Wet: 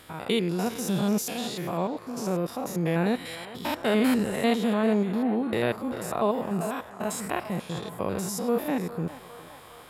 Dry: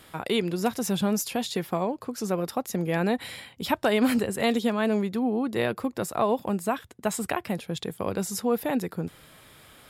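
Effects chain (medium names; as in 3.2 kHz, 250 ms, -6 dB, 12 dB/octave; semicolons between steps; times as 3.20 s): spectrogram pixelated in time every 100 ms; band-passed feedback delay 407 ms, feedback 81%, band-pass 1.1 kHz, level -12 dB; trim +2 dB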